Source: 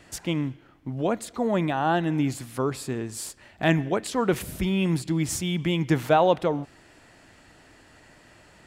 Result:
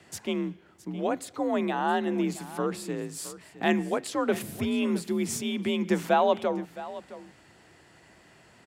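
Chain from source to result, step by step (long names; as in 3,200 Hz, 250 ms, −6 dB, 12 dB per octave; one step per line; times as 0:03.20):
frequency shifter +47 Hz
single-tap delay 665 ms −16 dB
level −3 dB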